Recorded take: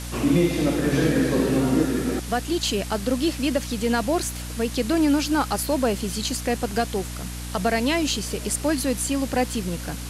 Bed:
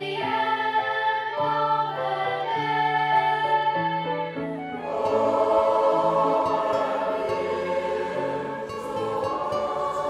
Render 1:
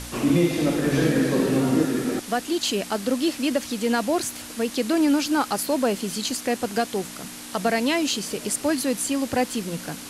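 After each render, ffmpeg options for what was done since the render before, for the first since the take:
ffmpeg -i in.wav -af "bandreject=frequency=60:width_type=h:width=4,bandreject=frequency=120:width_type=h:width=4,bandreject=frequency=180:width_type=h:width=4" out.wav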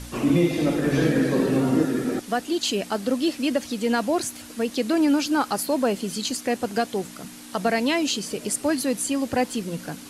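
ffmpeg -i in.wav -af "afftdn=noise_reduction=6:noise_floor=-38" out.wav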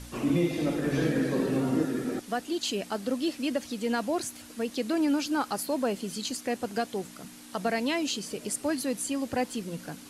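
ffmpeg -i in.wav -af "volume=-6dB" out.wav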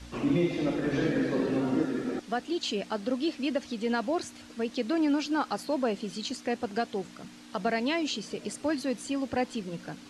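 ffmpeg -i in.wav -af "lowpass=5400,adynamicequalizer=threshold=0.00708:dfrequency=130:dqfactor=1.5:tfrequency=130:tqfactor=1.5:attack=5:release=100:ratio=0.375:range=2.5:mode=cutabove:tftype=bell" out.wav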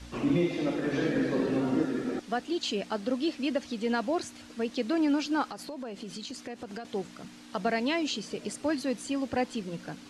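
ffmpeg -i in.wav -filter_complex "[0:a]asettb=1/sr,asplit=3[link_01][link_02][link_03];[link_01]atrim=end=0.434[link_04];[link_02]atrim=start=0.43:end=1.14,asetpts=PTS-STARTPTS,afade=type=in:duration=0.004:curve=qsin,afade=type=out:start_time=0.706:duration=0.004:curve=qsin,lowshelf=frequency=97:gain=-10[link_05];[link_03]atrim=start=1.136[link_06];[link_04][link_05]acrossfade=duration=0.004:curve1=hsin:curve2=qsin[link_07];[link_07][link_06]acrossfade=duration=0.004:curve1=qsin:curve2=hsin,asettb=1/sr,asplit=3[link_08][link_09][link_10];[link_08]atrim=end=5.504[link_11];[link_09]atrim=start=5.5:end=6.85,asetpts=PTS-STARTPTS,afade=type=in:duration=0.004:curve=qsin,afade=type=out:start_time=1.346:duration=0.004:curve=qsin,acompressor=threshold=-35dB:ratio=10:attack=3.2:release=140:knee=1:detection=peak[link_12];[link_10]atrim=start=6.846[link_13];[link_11][link_12]acrossfade=duration=0.004:curve1=hsin:curve2=qsin[link_14];[link_14][link_13]acrossfade=duration=0.004:curve1=qsin:curve2=hsin" out.wav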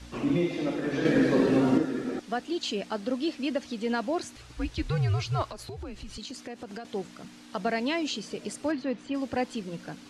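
ffmpeg -i in.wav -filter_complex "[0:a]asettb=1/sr,asplit=3[link_01][link_02][link_03];[link_01]atrim=end=1.054[link_04];[link_02]atrim=start=1.05:end=1.78,asetpts=PTS-STARTPTS,afade=type=in:duration=0.004:curve=qsin,afade=type=out:start_time=0.726:duration=0.004:curve=qsin,acontrast=37[link_05];[link_03]atrim=start=1.776[link_06];[link_04][link_05]acrossfade=duration=0.004:curve1=hsin:curve2=qsin[link_07];[link_07][link_06]acrossfade=duration=0.004:curve1=qsin:curve2=hsin,asettb=1/sr,asplit=3[link_08][link_09][link_10];[link_08]atrim=end=4.364[link_11];[link_09]atrim=start=4.36:end=6.18,asetpts=PTS-STARTPTS,afade=type=in:duration=0.004:curve=qsin,afade=type=out:start_time=1.816:duration=0.004:curve=qsin,afreqshift=-180[link_12];[link_10]atrim=start=6.176[link_13];[link_11][link_12]acrossfade=duration=0.004:curve1=hsin:curve2=qsin[link_14];[link_14][link_13]acrossfade=duration=0.004:curve1=qsin:curve2=hsin,asplit=3[link_15][link_16][link_17];[link_15]afade=type=out:start_time=8.71:duration=0.02[link_18];[link_16]lowpass=3000,afade=type=in:start_time=8.71:duration=0.02,afade=type=out:start_time=9.13:duration=0.02[link_19];[link_17]afade=type=in:start_time=9.13:duration=0.02[link_20];[link_18][link_19][link_20]amix=inputs=3:normalize=0" out.wav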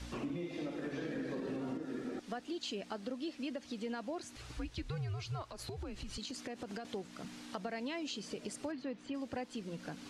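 ffmpeg -i in.wav -af "alimiter=limit=-20dB:level=0:latency=1:release=183,acompressor=threshold=-41dB:ratio=3" out.wav

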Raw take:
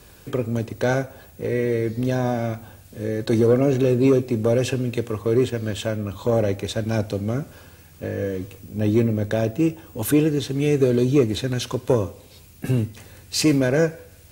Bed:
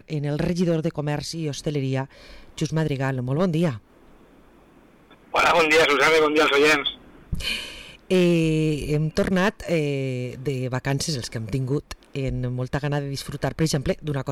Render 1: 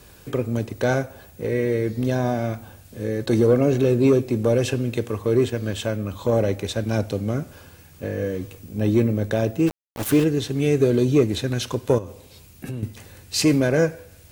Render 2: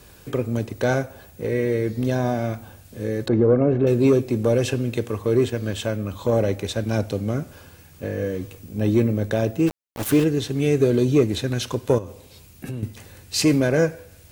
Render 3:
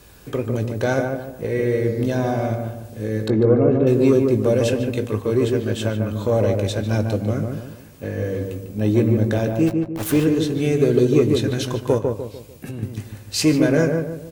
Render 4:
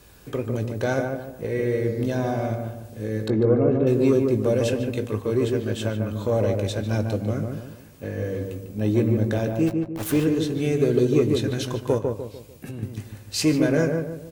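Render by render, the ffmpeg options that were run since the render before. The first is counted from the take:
ffmpeg -i in.wav -filter_complex "[0:a]asplit=3[link_01][link_02][link_03];[link_01]afade=type=out:start_time=9.66:duration=0.02[link_04];[link_02]aeval=exprs='val(0)*gte(abs(val(0)),0.0562)':channel_layout=same,afade=type=in:start_time=9.66:duration=0.02,afade=type=out:start_time=10.23:duration=0.02[link_05];[link_03]afade=type=in:start_time=10.23:duration=0.02[link_06];[link_04][link_05][link_06]amix=inputs=3:normalize=0,asettb=1/sr,asplit=3[link_07][link_08][link_09];[link_07]atrim=end=11.984[link_10];[link_08]atrim=start=11.98:end=12.83,asetpts=PTS-STARTPTS,afade=type=in:duration=0.004:curve=qsin,afade=type=out:start_time=0.846:duration=0.004:curve=qsin,acompressor=threshold=-29dB:ratio=4:attack=3.2:release=140:knee=1:detection=peak[link_11];[link_09]atrim=start=12.826[link_12];[link_10][link_11]acrossfade=duration=0.004:curve1=hsin:curve2=qsin[link_13];[link_13][link_12]acrossfade=duration=0.004:curve1=qsin:curve2=hsin" out.wav
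ffmpeg -i in.wav -filter_complex "[0:a]asettb=1/sr,asplit=3[link_01][link_02][link_03];[link_01]atrim=end=3.284[link_04];[link_02]atrim=start=3.28:end=3.87,asetpts=PTS-STARTPTS,afade=type=in:duration=0.004:curve=qsin,afade=type=out:start_time=0.586:duration=0.004:curve=qsin,lowpass=1500[link_05];[link_03]atrim=start=3.866[link_06];[link_04][link_05]acrossfade=duration=0.004:curve1=hsin:curve2=qsin[link_07];[link_07][link_06]acrossfade=duration=0.004:curve1=qsin:curve2=hsin" out.wav
ffmpeg -i in.wav -filter_complex "[0:a]asplit=2[link_01][link_02];[link_02]adelay=19,volume=-11dB[link_03];[link_01][link_03]amix=inputs=2:normalize=0,asplit=2[link_04][link_05];[link_05]adelay=148,lowpass=frequency=1200:poles=1,volume=-3dB,asplit=2[link_06][link_07];[link_07]adelay=148,lowpass=frequency=1200:poles=1,volume=0.41,asplit=2[link_08][link_09];[link_09]adelay=148,lowpass=frequency=1200:poles=1,volume=0.41,asplit=2[link_10][link_11];[link_11]adelay=148,lowpass=frequency=1200:poles=1,volume=0.41,asplit=2[link_12][link_13];[link_13]adelay=148,lowpass=frequency=1200:poles=1,volume=0.41[link_14];[link_06][link_08][link_10][link_12][link_14]amix=inputs=5:normalize=0[link_15];[link_04][link_15]amix=inputs=2:normalize=0" out.wav
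ffmpeg -i in.wav -af "volume=-3.5dB" out.wav

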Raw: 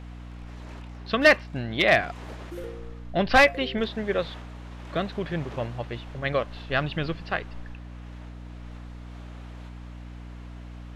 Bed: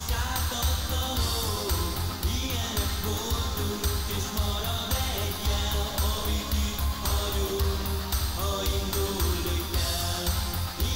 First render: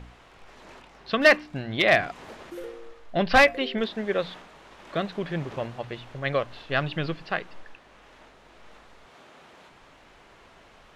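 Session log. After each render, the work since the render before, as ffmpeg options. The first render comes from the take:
ffmpeg -i in.wav -af "bandreject=frequency=60:width_type=h:width=4,bandreject=frequency=120:width_type=h:width=4,bandreject=frequency=180:width_type=h:width=4,bandreject=frequency=240:width_type=h:width=4,bandreject=frequency=300:width_type=h:width=4" out.wav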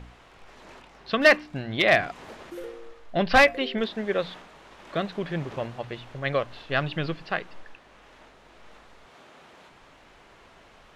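ffmpeg -i in.wav -af anull out.wav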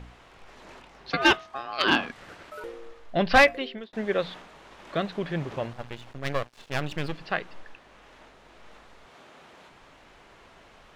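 ffmpeg -i in.wav -filter_complex "[0:a]asettb=1/sr,asplit=3[link_01][link_02][link_03];[link_01]atrim=end=1.104[link_04];[link_02]atrim=start=1.1:end=2.64,asetpts=PTS-STARTPTS,afade=type=in:duration=0.004:curve=qsin,afade=type=out:start_time=1.536:duration=0.004:curve=qsin,aeval=exprs='val(0)*sin(2*PI*950*n/s)':channel_layout=same[link_05];[link_03]atrim=start=2.636[link_06];[link_04][link_05]acrossfade=duration=0.004:curve1=hsin:curve2=qsin[link_07];[link_07][link_06]acrossfade=duration=0.004:curve1=qsin:curve2=hsin,asettb=1/sr,asplit=3[link_08][link_09][link_10];[link_08]atrim=end=5.734[link_11];[link_09]atrim=start=5.73:end=7.18,asetpts=PTS-STARTPTS,afade=type=in:duration=0.004:curve=qsin,afade=type=out:start_time=1.446:duration=0.004:curve=qsin,aeval=exprs='max(val(0),0)':channel_layout=same[link_12];[link_10]atrim=start=7.176[link_13];[link_11][link_12]acrossfade=duration=0.004:curve1=hsin:curve2=qsin[link_14];[link_14][link_13]acrossfade=duration=0.004:curve1=qsin:curve2=hsin,asplit=2[link_15][link_16];[link_15]atrim=end=3.93,asetpts=PTS-STARTPTS,afade=type=out:start_time=3.42:duration=0.51[link_17];[link_16]atrim=start=3.93,asetpts=PTS-STARTPTS,afade=type=in:duration=0.004:curve=hsin[link_18];[link_17][link_18]concat=n=2:v=0:a=1" out.wav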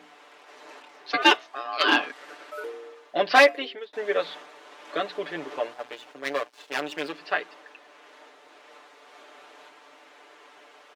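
ffmpeg -i in.wav -af "highpass=frequency=310:width=0.5412,highpass=frequency=310:width=1.3066,aecho=1:1:6.8:0.82" out.wav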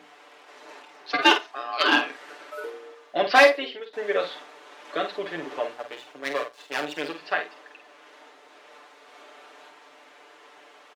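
ffmpeg -i in.wav -filter_complex "[0:a]asplit=2[link_01][link_02];[link_02]adelay=48,volume=-7.5dB[link_03];[link_01][link_03]amix=inputs=2:normalize=0,aecho=1:1:87:0.0668" out.wav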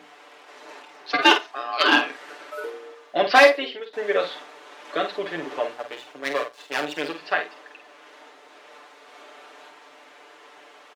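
ffmpeg -i in.wav -af "volume=2.5dB,alimiter=limit=-2dB:level=0:latency=1" out.wav

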